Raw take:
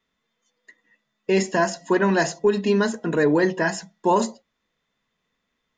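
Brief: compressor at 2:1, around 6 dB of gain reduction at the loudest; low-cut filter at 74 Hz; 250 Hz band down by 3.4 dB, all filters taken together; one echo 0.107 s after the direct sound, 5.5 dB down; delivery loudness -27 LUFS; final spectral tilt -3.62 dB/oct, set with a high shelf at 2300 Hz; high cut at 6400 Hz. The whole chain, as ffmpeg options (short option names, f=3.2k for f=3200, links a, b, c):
-af "highpass=74,lowpass=6.4k,equalizer=f=250:t=o:g=-5.5,highshelf=f=2.3k:g=8.5,acompressor=threshold=-26dB:ratio=2,aecho=1:1:107:0.531,volume=-1dB"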